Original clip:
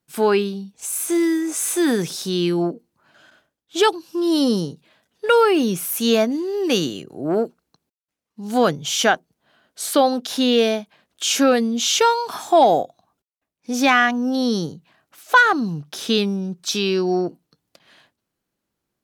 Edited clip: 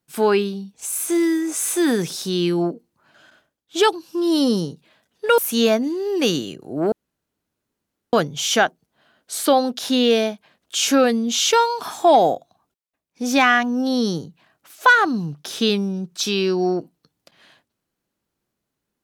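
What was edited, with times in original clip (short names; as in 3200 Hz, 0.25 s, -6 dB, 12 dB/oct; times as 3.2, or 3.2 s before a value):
5.38–5.86 cut
7.4–8.61 room tone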